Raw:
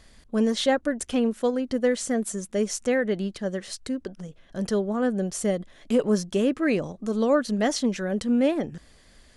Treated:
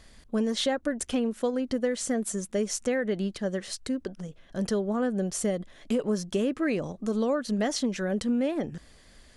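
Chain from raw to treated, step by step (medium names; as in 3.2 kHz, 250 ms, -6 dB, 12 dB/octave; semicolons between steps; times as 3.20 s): compression, threshold -23 dBFS, peak gain reduction 8 dB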